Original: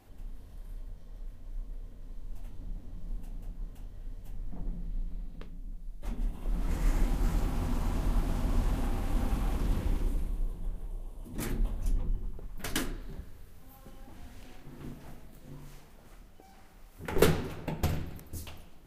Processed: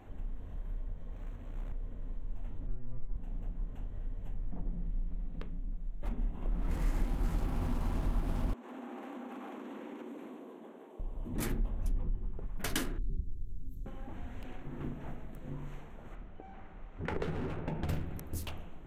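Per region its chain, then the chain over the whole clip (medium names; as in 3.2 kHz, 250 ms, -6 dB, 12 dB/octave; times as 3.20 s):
1.12–1.72 s: high-pass 44 Hz + flutter echo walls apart 10.7 m, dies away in 0.48 s + short-mantissa float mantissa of 2-bit
2.67–3.16 s: one-bit delta coder 16 kbps, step -38 dBFS + tilt EQ -4.5 dB/octave + inharmonic resonator 120 Hz, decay 0.57 s, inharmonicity 0.008
8.53–11.00 s: Chebyshev high-pass 230 Hz, order 5 + compression 10:1, threshold -46 dBFS
12.98–13.86 s: elliptic band-stop 360–4500 Hz + bass shelf 88 Hz +11.5 dB
16.15–17.89 s: Gaussian low-pass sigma 1.6 samples + compression, threshold -32 dBFS
whole clip: local Wiener filter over 9 samples; compression 2:1, threshold -41 dBFS; trim +6 dB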